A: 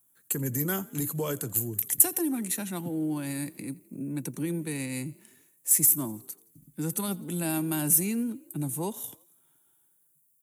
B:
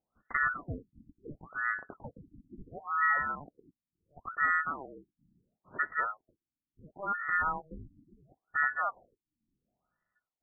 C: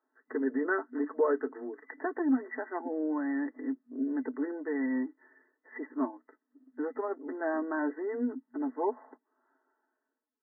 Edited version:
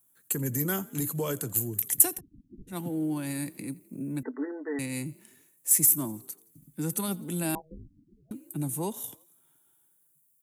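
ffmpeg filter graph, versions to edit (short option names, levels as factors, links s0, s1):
-filter_complex "[1:a]asplit=2[s0][s1];[0:a]asplit=4[s2][s3][s4][s5];[s2]atrim=end=2.21[s6];[s0]atrim=start=2.11:end=2.77[s7];[s3]atrim=start=2.67:end=4.232[s8];[2:a]atrim=start=4.228:end=4.792[s9];[s4]atrim=start=4.788:end=7.552[s10];[s1]atrim=start=7.548:end=8.312[s11];[s5]atrim=start=8.308[s12];[s6][s7]acrossfade=d=0.1:c1=tri:c2=tri[s13];[s13][s8]acrossfade=d=0.1:c1=tri:c2=tri[s14];[s14][s9]acrossfade=d=0.004:c1=hsin:c2=hsin[s15];[s15][s10]acrossfade=d=0.004:c1=hsin:c2=hsin[s16];[s16][s11]acrossfade=d=0.004:c1=hsin:c2=hsin[s17];[s17][s12]acrossfade=d=0.004:c1=hsin:c2=hsin"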